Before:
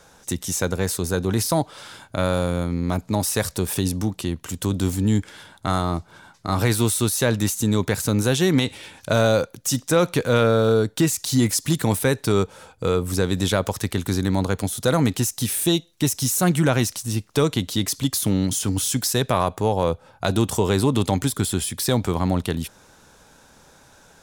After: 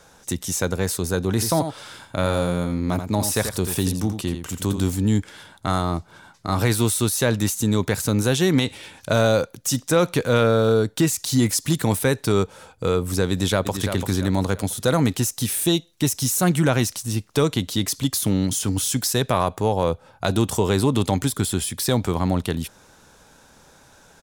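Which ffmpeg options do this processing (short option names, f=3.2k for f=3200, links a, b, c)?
-filter_complex "[0:a]asplit=3[a][b][c];[a]afade=t=out:st=1.39:d=0.02[d];[b]aecho=1:1:85:0.376,afade=t=in:st=1.39:d=0.02,afade=t=out:st=4.84:d=0.02[e];[c]afade=t=in:st=4.84:d=0.02[f];[d][e][f]amix=inputs=3:normalize=0,asplit=2[g][h];[h]afade=t=in:st=13.31:d=0.01,afade=t=out:st=13.82:d=0.01,aecho=0:1:340|680|1020|1360|1700:0.421697|0.168679|0.0674714|0.0269886|0.0107954[i];[g][i]amix=inputs=2:normalize=0"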